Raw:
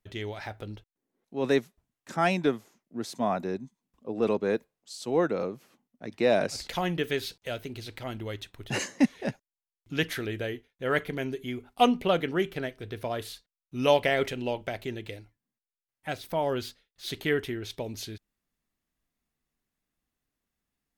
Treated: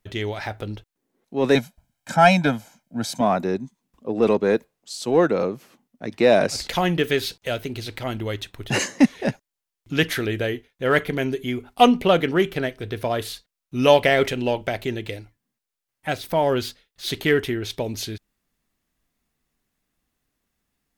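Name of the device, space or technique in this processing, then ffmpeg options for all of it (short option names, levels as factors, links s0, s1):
parallel distortion: -filter_complex "[0:a]asettb=1/sr,asplit=3[s0][s1][s2];[s0]atrim=end=1.554[s3];[s1]atrim=start=1.55:end=3.21,asetpts=PTS-STARTPTS,afade=t=in:d=0.004:c=qsin,afade=t=out:st=1.656:d=0.004:c=qsin,aecho=1:1:1.3:0.92,atrim=end_sample=73206[s4];[s2]atrim=start=3.206[s5];[s3][s4]acrossfade=d=0.004:c1=hsin:c2=qsin[s6];[s6][s5]acrossfade=d=0.004:c1=qsin:c2=hsin,asplit=2[s7][s8];[s8]asoftclip=type=hard:threshold=0.0562,volume=0.224[s9];[s7][s9]amix=inputs=2:normalize=0,volume=2.11"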